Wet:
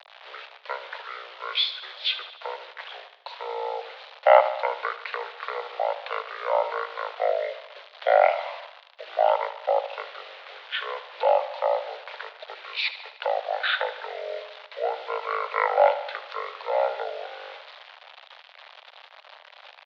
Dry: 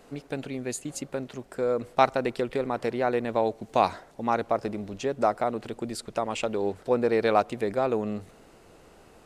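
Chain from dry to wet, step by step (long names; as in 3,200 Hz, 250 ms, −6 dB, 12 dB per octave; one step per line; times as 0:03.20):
change of speed 0.466×
bit-depth reduction 8 bits, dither none
single-sideband voice off tune +240 Hz 360–3,600 Hz
high-shelf EQ 2,800 Hz +11.5 dB
on a send: repeating echo 75 ms, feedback 59%, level −13 dB
on the sum: level +5.5 dB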